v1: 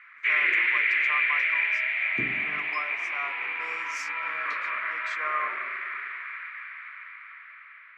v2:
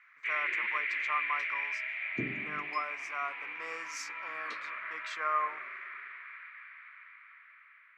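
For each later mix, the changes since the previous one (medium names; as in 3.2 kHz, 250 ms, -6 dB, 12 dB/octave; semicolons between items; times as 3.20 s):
first sound -10.0 dB; second sound: add peaking EQ 72 Hz -11 dB 0.44 oct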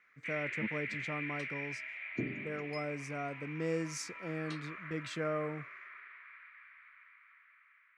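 speech: remove resonant high-pass 1.1 kHz, resonance Q 7.8; first sound -7.0 dB; master: add peaking EQ 9.3 kHz +13 dB 0.27 oct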